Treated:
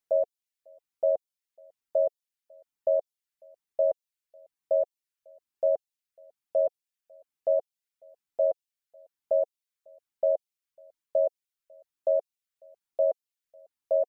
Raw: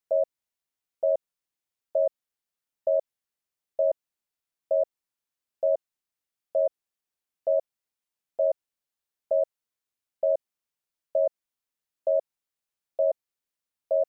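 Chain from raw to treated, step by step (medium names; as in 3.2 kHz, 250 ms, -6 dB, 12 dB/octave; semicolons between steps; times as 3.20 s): reverb removal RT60 0.61 s; echo from a far wall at 94 m, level -29 dB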